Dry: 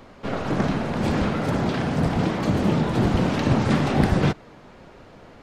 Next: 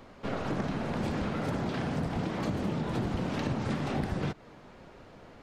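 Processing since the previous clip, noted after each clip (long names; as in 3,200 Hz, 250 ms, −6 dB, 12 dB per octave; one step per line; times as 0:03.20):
downward compressor, threshold −23 dBFS, peak gain reduction 9.5 dB
level −5 dB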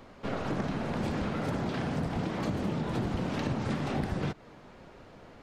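no processing that can be heard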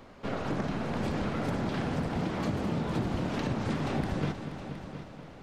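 echo machine with several playback heads 239 ms, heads all three, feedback 43%, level −14.5 dB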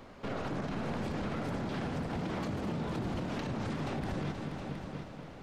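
brickwall limiter −27.5 dBFS, peak gain reduction 9.5 dB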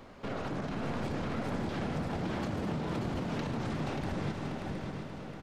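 single-tap delay 583 ms −5.5 dB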